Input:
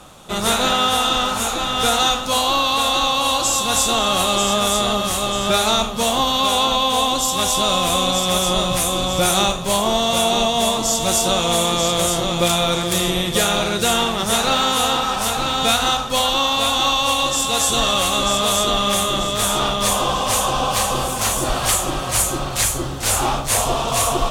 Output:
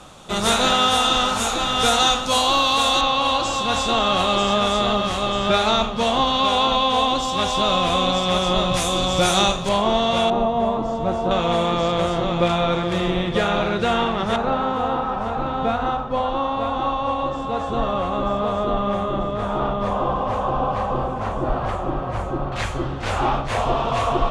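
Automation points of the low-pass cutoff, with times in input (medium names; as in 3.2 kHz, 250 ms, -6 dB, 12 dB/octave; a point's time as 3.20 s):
8.4 kHz
from 3.01 s 3.5 kHz
from 8.74 s 6.4 kHz
from 9.69 s 3 kHz
from 10.30 s 1.1 kHz
from 11.31 s 2.2 kHz
from 14.36 s 1.1 kHz
from 22.52 s 2.3 kHz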